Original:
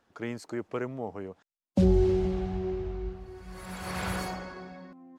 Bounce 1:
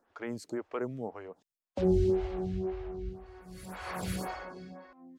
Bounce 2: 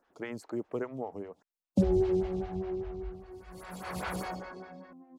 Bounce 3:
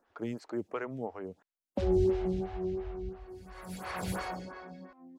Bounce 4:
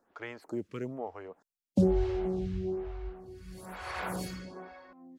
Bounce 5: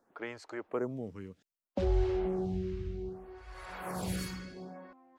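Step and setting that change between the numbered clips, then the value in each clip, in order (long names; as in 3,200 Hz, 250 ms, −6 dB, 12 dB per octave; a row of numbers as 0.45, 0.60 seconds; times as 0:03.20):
phaser with staggered stages, speed: 1.9, 5, 2.9, 1.1, 0.64 Hertz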